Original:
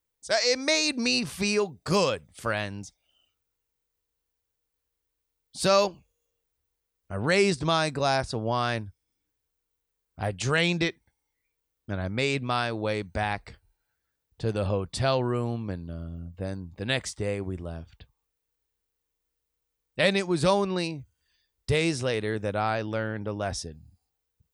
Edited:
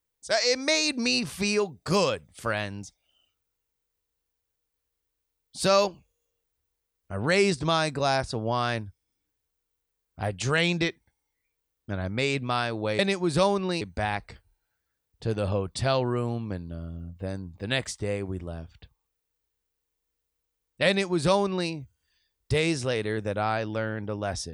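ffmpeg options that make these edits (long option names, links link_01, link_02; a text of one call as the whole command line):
ffmpeg -i in.wav -filter_complex "[0:a]asplit=3[link_01][link_02][link_03];[link_01]atrim=end=12.992[link_04];[link_02]atrim=start=20.058:end=20.882[link_05];[link_03]atrim=start=12.988[link_06];[link_04][link_05]acrossfade=duration=0.004:curve1=hsin:curve2=hsin[link_07];[link_07][link_06]acrossfade=duration=0.004:curve1=hsin:curve2=hsin" out.wav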